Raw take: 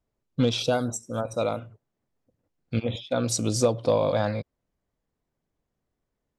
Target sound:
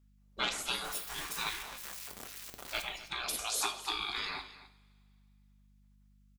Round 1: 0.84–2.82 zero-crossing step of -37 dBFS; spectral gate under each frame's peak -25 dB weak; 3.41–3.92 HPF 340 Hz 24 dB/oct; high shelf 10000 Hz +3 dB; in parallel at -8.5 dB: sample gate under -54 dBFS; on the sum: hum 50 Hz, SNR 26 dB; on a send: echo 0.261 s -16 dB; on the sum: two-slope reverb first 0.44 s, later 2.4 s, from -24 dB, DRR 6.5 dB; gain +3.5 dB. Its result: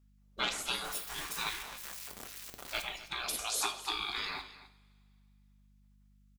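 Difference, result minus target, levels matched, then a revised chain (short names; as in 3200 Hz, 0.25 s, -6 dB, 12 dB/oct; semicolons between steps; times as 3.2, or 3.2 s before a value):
sample gate: distortion +12 dB
0.84–2.82 zero-crossing step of -37 dBFS; spectral gate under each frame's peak -25 dB weak; 3.41–3.92 HPF 340 Hz 24 dB/oct; high shelf 10000 Hz +3 dB; in parallel at -8.5 dB: sample gate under -64.5 dBFS; on the sum: hum 50 Hz, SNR 26 dB; on a send: echo 0.261 s -16 dB; on the sum: two-slope reverb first 0.44 s, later 2.4 s, from -24 dB, DRR 6.5 dB; gain +3.5 dB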